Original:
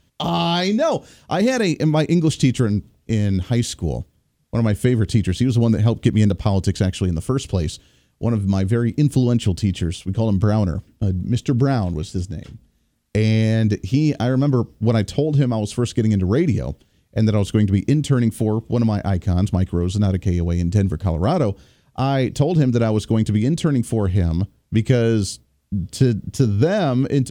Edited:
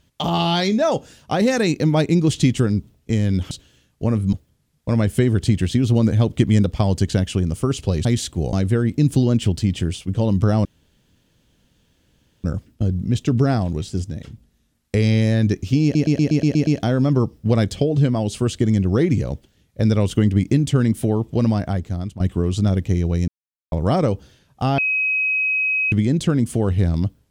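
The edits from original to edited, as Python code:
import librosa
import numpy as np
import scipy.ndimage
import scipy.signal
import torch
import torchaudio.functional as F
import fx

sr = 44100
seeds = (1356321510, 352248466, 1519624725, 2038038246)

y = fx.edit(x, sr, fx.swap(start_s=3.51, length_s=0.48, other_s=7.71, other_length_s=0.82),
    fx.insert_room_tone(at_s=10.65, length_s=1.79),
    fx.stutter(start_s=14.04, slice_s=0.12, count=8),
    fx.fade_out_to(start_s=18.92, length_s=0.65, floor_db=-17.0),
    fx.silence(start_s=20.65, length_s=0.44),
    fx.bleep(start_s=22.15, length_s=1.14, hz=2540.0, db=-17.0), tone=tone)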